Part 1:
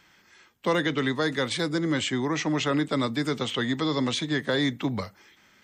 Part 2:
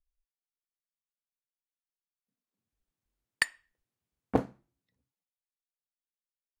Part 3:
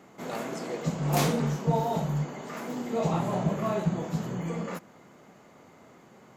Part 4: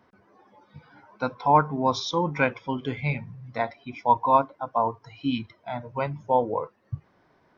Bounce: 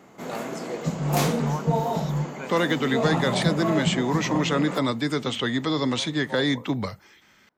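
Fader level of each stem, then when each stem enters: +1.5, -8.0, +2.5, -15.5 dB; 1.85, 0.00, 0.00, 0.00 s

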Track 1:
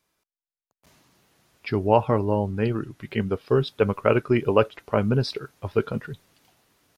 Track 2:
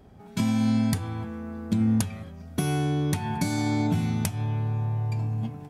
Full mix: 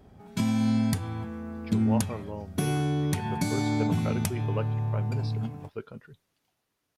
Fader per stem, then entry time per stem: -15.0, -1.5 dB; 0.00, 0.00 s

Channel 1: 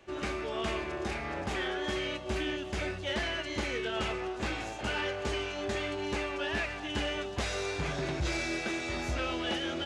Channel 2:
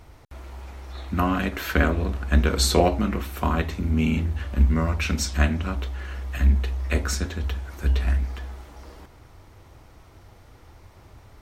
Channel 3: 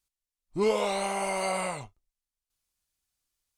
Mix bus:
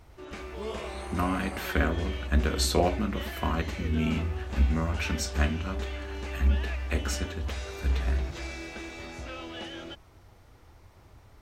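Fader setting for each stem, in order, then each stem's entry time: -6.5, -5.5, -13.0 dB; 0.10, 0.00, 0.00 s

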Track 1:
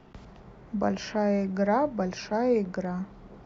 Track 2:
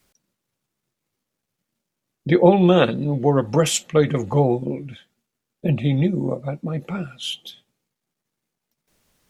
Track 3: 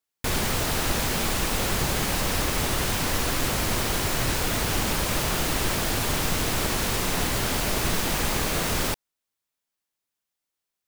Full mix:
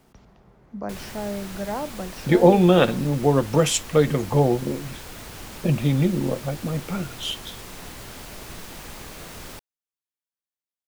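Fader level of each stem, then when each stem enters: -5.0, -1.0, -13.5 dB; 0.00, 0.00, 0.65 s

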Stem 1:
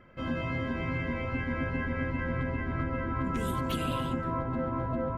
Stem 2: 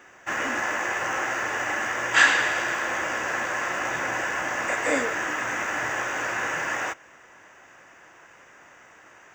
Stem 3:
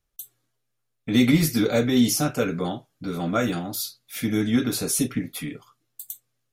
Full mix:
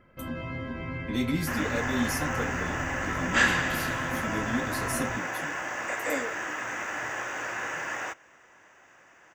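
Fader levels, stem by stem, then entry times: -3.0, -5.5, -10.5 dB; 0.00, 1.20, 0.00 s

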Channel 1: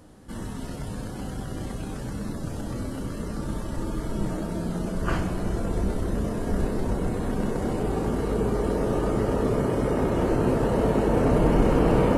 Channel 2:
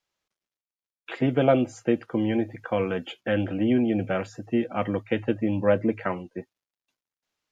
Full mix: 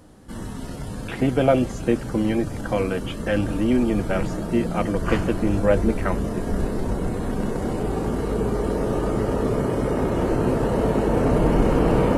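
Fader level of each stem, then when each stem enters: +1.5, +2.0 dB; 0.00, 0.00 s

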